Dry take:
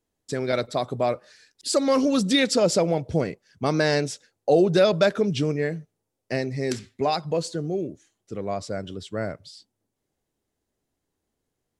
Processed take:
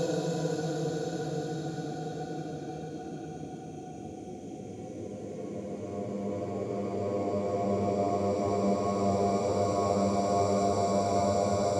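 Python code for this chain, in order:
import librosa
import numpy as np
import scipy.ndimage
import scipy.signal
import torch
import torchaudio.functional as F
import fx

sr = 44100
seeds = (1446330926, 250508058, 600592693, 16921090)

y = fx.spec_dropout(x, sr, seeds[0], share_pct=39)
y = fx.paulstretch(y, sr, seeds[1], factor=12.0, window_s=1.0, from_s=7.65)
y = F.gain(torch.from_numpy(y), 4.0).numpy()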